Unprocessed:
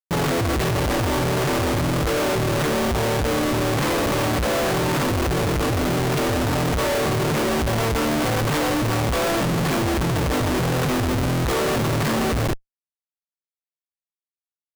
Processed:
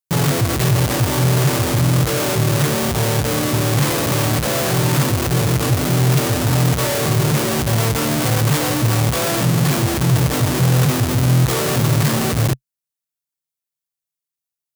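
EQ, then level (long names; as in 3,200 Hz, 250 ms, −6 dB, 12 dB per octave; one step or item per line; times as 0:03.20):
high-pass filter 70 Hz
parametric band 130 Hz +12 dB 0.67 octaves
high-shelf EQ 4,500 Hz +10.5 dB
0.0 dB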